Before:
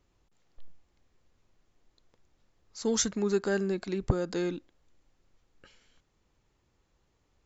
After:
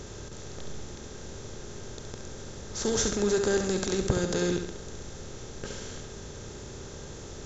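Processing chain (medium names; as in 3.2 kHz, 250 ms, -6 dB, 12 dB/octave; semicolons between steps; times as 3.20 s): spectral levelling over time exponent 0.4; 3.63–4.08 s: treble shelf 6.5 kHz +6.5 dB; flutter echo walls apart 11.7 m, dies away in 0.61 s; trim -2.5 dB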